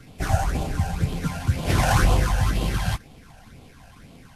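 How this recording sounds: phasing stages 12, 2 Hz, lowest notch 350–1700 Hz; aliases and images of a low sample rate 7500 Hz, jitter 20%; Vorbis

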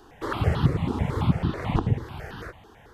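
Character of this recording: notches that jump at a steady rate 9.1 Hz 570–2200 Hz

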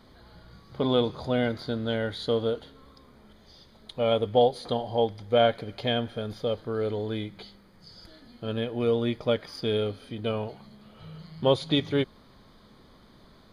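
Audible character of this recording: noise floor -56 dBFS; spectral tilt -4.5 dB/oct

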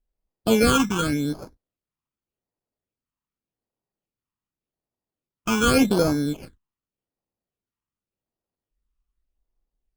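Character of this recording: aliases and images of a low sample rate 1900 Hz, jitter 0%; phasing stages 8, 0.86 Hz, lowest notch 550–2900 Hz; Opus

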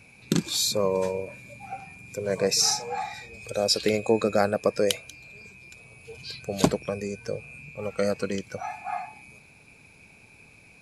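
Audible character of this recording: noise floor -54 dBFS; spectral tilt -3.5 dB/oct

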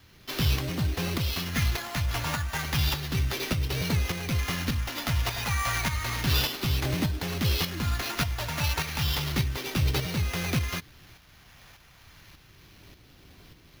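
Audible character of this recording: phasing stages 2, 0.32 Hz, lowest notch 350–1100 Hz; aliases and images of a low sample rate 8400 Hz, jitter 0%; tremolo saw up 1.7 Hz, depth 50%

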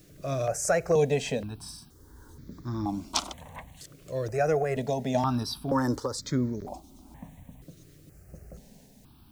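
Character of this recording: random-step tremolo, depth 55%; a quantiser's noise floor 12-bit, dither triangular; notches that jump at a steady rate 2.1 Hz 230–2800 Hz

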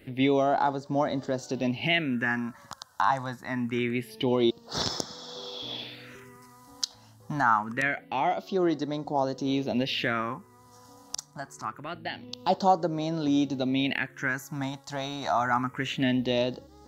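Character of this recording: phasing stages 4, 0.25 Hz, lowest notch 380–2500 Hz

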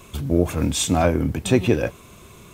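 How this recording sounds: noise floor -46 dBFS; spectral tilt -5.5 dB/oct

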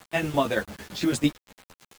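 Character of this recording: tremolo saw down 8.9 Hz, depth 75%; a quantiser's noise floor 8-bit, dither none; a shimmering, thickened sound

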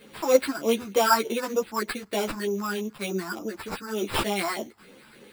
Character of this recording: phasing stages 4, 3.3 Hz, lowest notch 450–1900 Hz; aliases and images of a low sample rate 6300 Hz, jitter 0%; a shimmering, thickened sound

